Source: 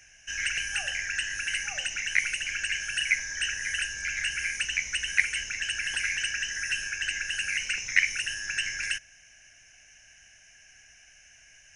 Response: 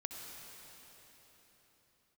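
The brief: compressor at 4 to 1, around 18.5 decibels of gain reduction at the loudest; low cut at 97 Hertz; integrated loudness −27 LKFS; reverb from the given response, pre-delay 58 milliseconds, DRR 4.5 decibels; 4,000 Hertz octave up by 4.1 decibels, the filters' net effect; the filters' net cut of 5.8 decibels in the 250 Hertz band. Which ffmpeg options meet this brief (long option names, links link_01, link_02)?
-filter_complex "[0:a]highpass=97,equalizer=frequency=250:width_type=o:gain=-8.5,equalizer=frequency=4000:width_type=o:gain=7.5,acompressor=threshold=-39dB:ratio=4,asplit=2[link_01][link_02];[1:a]atrim=start_sample=2205,adelay=58[link_03];[link_02][link_03]afir=irnorm=-1:irlink=0,volume=-3.5dB[link_04];[link_01][link_04]amix=inputs=2:normalize=0,volume=10dB"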